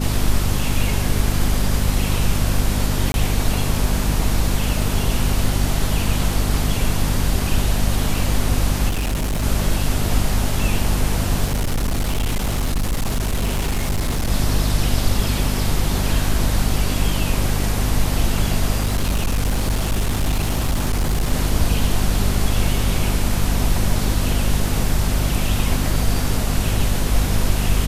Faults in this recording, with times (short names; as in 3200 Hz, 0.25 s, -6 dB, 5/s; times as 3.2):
hum 50 Hz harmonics 5 -22 dBFS
3.12–3.14 gap 21 ms
8.88–9.44 clipped -18 dBFS
11.44–14.31 clipped -16.5 dBFS
18.82–21.33 clipped -15 dBFS